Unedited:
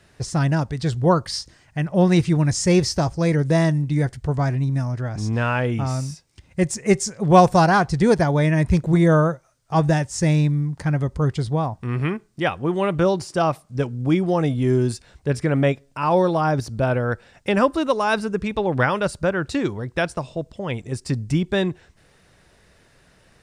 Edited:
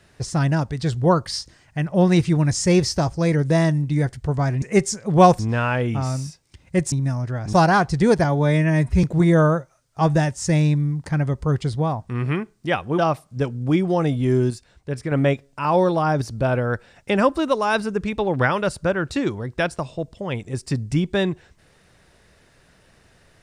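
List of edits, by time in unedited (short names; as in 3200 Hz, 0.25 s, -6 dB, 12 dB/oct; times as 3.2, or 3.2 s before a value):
4.62–5.23 swap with 6.76–7.53
8.24–8.77 stretch 1.5×
12.72–13.37 cut
14.89–15.5 gain -5.5 dB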